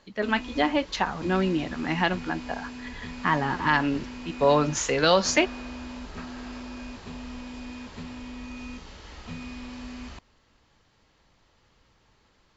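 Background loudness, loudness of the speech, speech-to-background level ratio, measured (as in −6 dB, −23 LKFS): −39.5 LKFS, −25.0 LKFS, 14.5 dB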